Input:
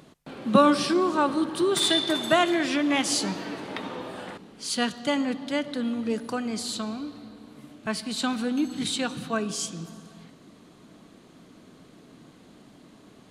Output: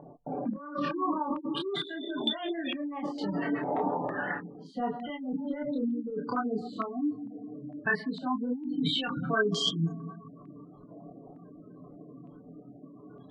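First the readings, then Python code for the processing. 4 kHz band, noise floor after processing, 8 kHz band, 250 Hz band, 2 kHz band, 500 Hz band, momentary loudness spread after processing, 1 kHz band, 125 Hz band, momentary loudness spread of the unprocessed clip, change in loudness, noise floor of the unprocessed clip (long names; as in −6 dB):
−6.0 dB, −52 dBFS, −18.5 dB, −5.0 dB, −3.0 dB, −7.0 dB, 21 LU, −5.5 dB, +1.5 dB, 15 LU, −6.5 dB, −53 dBFS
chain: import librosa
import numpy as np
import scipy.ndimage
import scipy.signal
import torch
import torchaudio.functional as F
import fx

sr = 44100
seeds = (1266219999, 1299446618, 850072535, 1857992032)

y = fx.spec_gate(x, sr, threshold_db=-15, keep='strong')
y = y + 0.5 * np.pad(y, (int(6.9 * sr / 1000.0), 0))[:len(y)]
y = fx.over_compress(y, sr, threshold_db=-30.0, ratio=-1.0)
y = fx.chorus_voices(y, sr, voices=6, hz=0.86, base_ms=27, depth_ms=3.8, mix_pct=45)
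y = fx.filter_held_lowpass(y, sr, hz=2.2, low_hz=770.0, high_hz=3300.0)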